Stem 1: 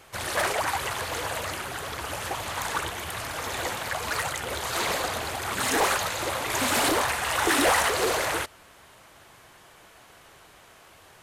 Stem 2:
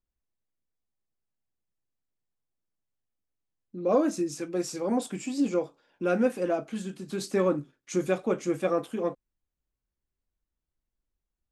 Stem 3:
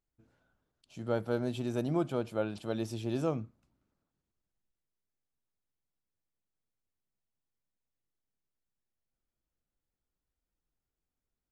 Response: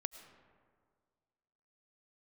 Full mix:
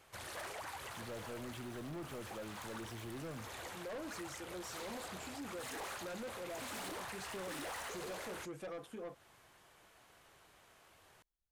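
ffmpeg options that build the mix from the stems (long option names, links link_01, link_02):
-filter_complex "[0:a]volume=-12dB[link_01];[1:a]equalizer=frequency=260:width_type=o:width=0.77:gain=-6.5,volume=-7dB[link_02];[2:a]acrusher=bits=8:mix=0:aa=0.000001,volume=-3.5dB[link_03];[link_01][link_02][link_03]amix=inputs=3:normalize=0,asoftclip=type=tanh:threshold=-35.5dB,acompressor=threshold=-47dB:ratio=2"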